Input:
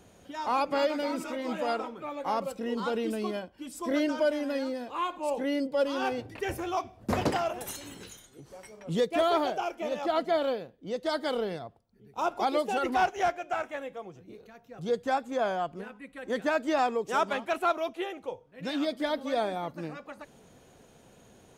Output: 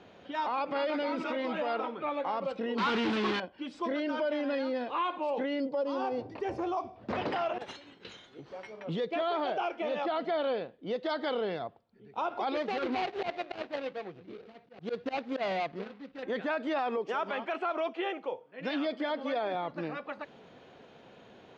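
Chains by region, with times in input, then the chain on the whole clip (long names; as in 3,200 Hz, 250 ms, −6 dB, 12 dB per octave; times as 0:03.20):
0:02.78–0:03.40: Chebyshev band-stop filter 380–920 Hz + low-shelf EQ 60 Hz −5.5 dB + log-companded quantiser 2 bits
0:05.69–0:06.96: flat-topped bell 2,300 Hz −10.5 dB + downward compressor 3 to 1, threshold −32 dBFS
0:07.58–0:08.05: mu-law and A-law mismatch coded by mu + downward expander −31 dBFS + one half of a high-frequency compander decoder only
0:12.55–0:16.23: running median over 41 samples + high-shelf EQ 2,900 Hz +8.5 dB + volume swells 111 ms
0:16.97–0:19.55: high-pass filter 190 Hz + notch filter 3,800 Hz, Q 8.1
whole clip: low-pass filter 4,000 Hz 24 dB per octave; brickwall limiter −28 dBFS; high-pass filter 290 Hz 6 dB per octave; level +5 dB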